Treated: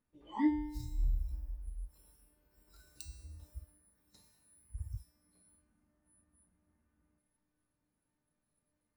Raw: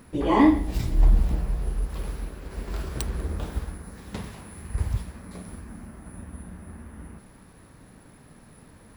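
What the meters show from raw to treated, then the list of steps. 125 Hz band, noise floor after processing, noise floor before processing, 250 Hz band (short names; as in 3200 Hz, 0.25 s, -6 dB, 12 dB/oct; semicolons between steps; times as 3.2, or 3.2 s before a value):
-16.5 dB, -85 dBFS, -52 dBFS, -13.5 dB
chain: spectral noise reduction 21 dB; resonator 300 Hz, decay 0.99 s, mix 90%; gain +4 dB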